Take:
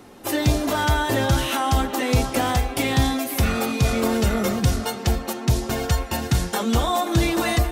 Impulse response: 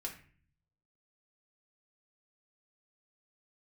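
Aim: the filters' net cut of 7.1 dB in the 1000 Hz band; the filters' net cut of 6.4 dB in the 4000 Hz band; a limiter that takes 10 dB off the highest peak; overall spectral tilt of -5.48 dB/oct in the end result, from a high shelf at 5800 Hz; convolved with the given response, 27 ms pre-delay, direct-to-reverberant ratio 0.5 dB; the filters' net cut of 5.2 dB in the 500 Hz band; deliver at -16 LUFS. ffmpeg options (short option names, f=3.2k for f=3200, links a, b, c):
-filter_complex "[0:a]equalizer=f=500:t=o:g=-4.5,equalizer=f=1k:t=o:g=-7.5,equalizer=f=4k:t=o:g=-6,highshelf=f=5.8k:g=-5,alimiter=limit=-19dB:level=0:latency=1,asplit=2[a][b];[1:a]atrim=start_sample=2205,adelay=27[c];[b][c]afir=irnorm=-1:irlink=0,volume=0.5dB[d];[a][d]amix=inputs=2:normalize=0,volume=8.5dB"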